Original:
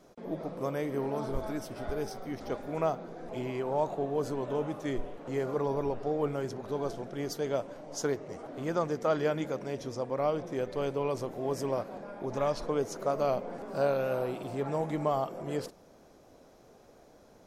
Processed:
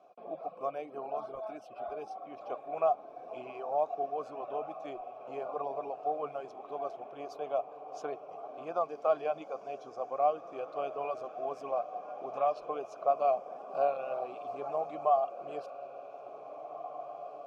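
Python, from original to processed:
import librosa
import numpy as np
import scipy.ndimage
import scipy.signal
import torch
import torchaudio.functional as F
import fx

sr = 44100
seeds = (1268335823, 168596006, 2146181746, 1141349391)

y = fx.vowel_filter(x, sr, vowel='a')
y = fx.dereverb_blind(y, sr, rt60_s=0.9)
y = fx.echo_diffused(y, sr, ms=1880, feedback_pct=52, wet_db=-12.5)
y = y * librosa.db_to_amplitude(8.5)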